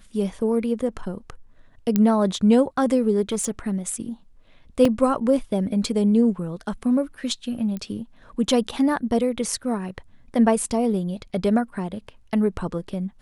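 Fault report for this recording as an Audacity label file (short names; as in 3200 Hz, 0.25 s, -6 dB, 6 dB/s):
1.960000	1.960000	pop -7 dBFS
3.320000	3.590000	clipped -19 dBFS
4.850000	4.850000	gap 3.3 ms
7.770000	7.770000	pop -19 dBFS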